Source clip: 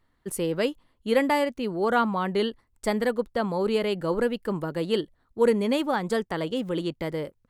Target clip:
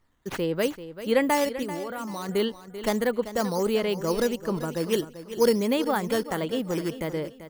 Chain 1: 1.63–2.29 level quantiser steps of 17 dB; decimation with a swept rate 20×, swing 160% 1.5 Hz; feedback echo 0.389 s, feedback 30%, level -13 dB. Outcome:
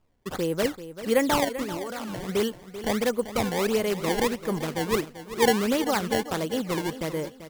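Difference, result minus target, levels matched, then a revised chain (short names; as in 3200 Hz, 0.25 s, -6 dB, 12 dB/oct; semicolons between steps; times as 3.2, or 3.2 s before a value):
decimation with a swept rate: distortion +12 dB
1.63–2.29 level quantiser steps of 17 dB; decimation with a swept rate 5×, swing 160% 1.5 Hz; feedback echo 0.389 s, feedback 30%, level -13 dB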